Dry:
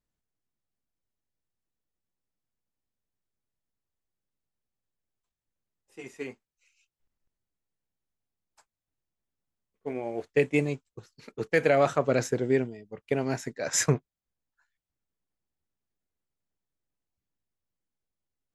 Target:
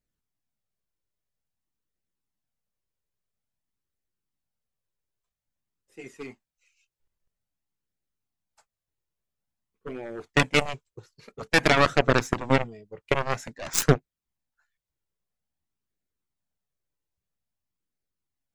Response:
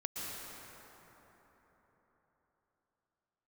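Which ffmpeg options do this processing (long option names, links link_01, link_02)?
-af "aeval=exprs='0.335*(cos(1*acos(clip(val(0)/0.335,-1,1)))-cos(1*PI/2))+0.0133*(cos(6*acos(clip(val(0)/0.335,-1,1)))-cos(6*PI/2))+0.075*(cos(7*acos(clip(val(0)/0.335,-1,1)))-cos(7*PI/2))':channel_layout=same,flanger=delay=0.4:depth=1.8:regen=-42:speed=0.5:shape=triangular,volume=8.5dB"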